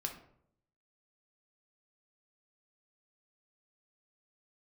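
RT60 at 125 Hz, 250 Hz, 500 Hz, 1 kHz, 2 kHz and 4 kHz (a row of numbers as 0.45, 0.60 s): 0.95, 0.85, 0.75, 0.60, 0.50, 0.40 s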